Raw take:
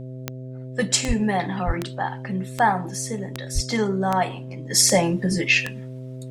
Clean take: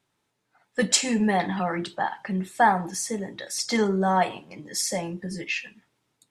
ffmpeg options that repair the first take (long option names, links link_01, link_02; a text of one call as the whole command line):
ffmpeg -i in.wav -filter_complex "[0:a]adeclick=threshold=4,bandreject=frequency=128.7:width_type=h:width=4,bandreject=frequency=257.4:width_type=h:width=4,bandreject=frequency=386.1:width_type=h:width=4,bandreject=frequency=514.8:width_type=h:width=4,bandreject=frequency=643.5:width_type=h:width=4,asplit=3[link_01][link_02][link_03];[link_01]afade=type=out:start_time=1.07:duration=0.02[link_04];[link_02]highpass=frequency=140:width=0.5412,highpass=frequency=140:width=1.3066,afade=type=in:start_time=1.07:duration=0.02,afade=type=out:start_time=1.19:duration=0.02[link_05];[link_03]afade=type=in:start_time=1.19:duration=0.02[link_06];[link_04][link_05][link_06]amix=inputs=3:normalize=0,asplit=3[link_07][link_08][link_09];[link_07]afade=type=out:start_time=1.66:duration=0.02[link_10];[link_08]highpass=frequency=140:width=0.5412,highpass=frequency=140:width=1.3066,afade=type=in:start_time=1.66:duration=0.02,afade=type=out:start_time=1.78:duration=0.02[link_11];[link_09]afade=type=in:start_time=1.78:duration=0.02[link_12];[link_10][link_11][link_12]amix=inputs=3:normalize=0,asplit=3[link_13][link_14][link_15];[link_13]afade=type=out:start_time=3.54:duration=0.02[link_16];[link_14]highpass=frequency=140:width=0.5412,highpass=frequency=140:width=1.3066,afade=type=in:start_time=3.54:duration=0.02,afade=type=out:start_time=3.66:duration=0.02[link_17];[link_15]afade=type=in:start_time=3.66:duration=0.02[link_18];[link_16][link_17][link_18]amix=inputs=3:normalize=0,asetnsamples=nb_out_samples=441:pad=0,asendcmd='4.7 volume volume -10.5dB',volume=0dB" out.wav